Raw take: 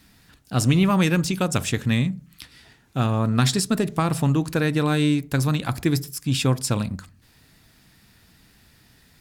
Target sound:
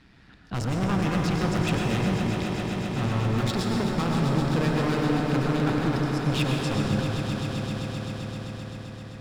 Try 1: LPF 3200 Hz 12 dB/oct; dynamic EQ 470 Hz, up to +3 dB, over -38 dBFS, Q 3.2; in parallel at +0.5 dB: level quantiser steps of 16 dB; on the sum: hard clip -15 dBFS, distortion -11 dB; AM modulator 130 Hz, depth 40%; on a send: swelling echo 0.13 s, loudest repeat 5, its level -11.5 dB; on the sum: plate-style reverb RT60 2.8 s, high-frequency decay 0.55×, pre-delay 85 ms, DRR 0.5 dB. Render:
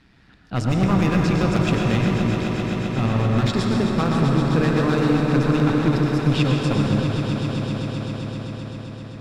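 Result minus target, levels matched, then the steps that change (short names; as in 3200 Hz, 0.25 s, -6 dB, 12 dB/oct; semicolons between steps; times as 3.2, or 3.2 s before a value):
hard clip: distortion -6 dB
change: hard clip -23.5 dBFS, distortion -5 dB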